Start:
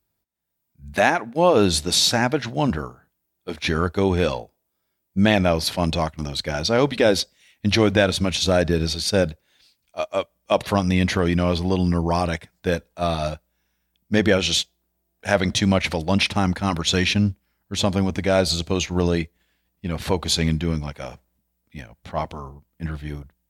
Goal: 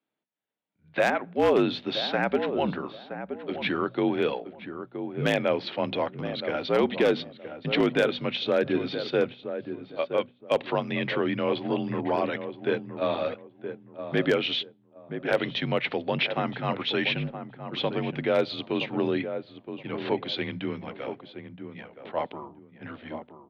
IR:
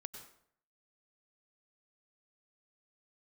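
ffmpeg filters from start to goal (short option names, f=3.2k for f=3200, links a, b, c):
-filter_complex "[0:a]equalizer=f=1.3k:w=0.53:g=-3.5,bandreject=f=60:t=h:w=6,bandreject=f=120:t=h:w=6,bandreject=f=180:t=h:w=6,bandreject=f=240:t=h:w=6,bandreject=f=300:t=h:w=6,asplit=2[a][b];[b]alimiter=limit=-14.5dB:level=0:latency=1:release=282,volume=-1.5dB[c];[a][c]amix=inputs=2:normalize=0,highpass=f=270:t=q:w=0.5412,highpass=f=270:t=q:w=1.307,lowpass=f=3.5k:t=q:w=0.5176,lowpass=f=3.5k:t=q:w=0.7071,lowpass=f=3.5k:t=q:w=1.932,afreqshift=-56,asplit=2[d][e];[e]adelay=971,lowpass=f=1.1k:p=1,volume=-8.5dB,asplit=2[f][g];[g]adelay=971,lowpass=f=1.1k:p=1,volume=0.26,asplit=2[h][i];[i]adelay=971,lowpass=f=1.1k:p=1,volume=0.26[j];[d][f][h][j]amix=inputs=4:normalize=0,aeval=exprs='0.398*(abs(mod(val(0)/0.398+3,4)-2)-1)':c=same,volume=-5.5dB"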